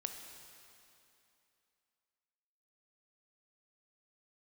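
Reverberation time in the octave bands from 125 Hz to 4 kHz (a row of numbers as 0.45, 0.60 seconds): 2.7, 2.8, 2.8, 2.8, 2.7, 2.6 seconds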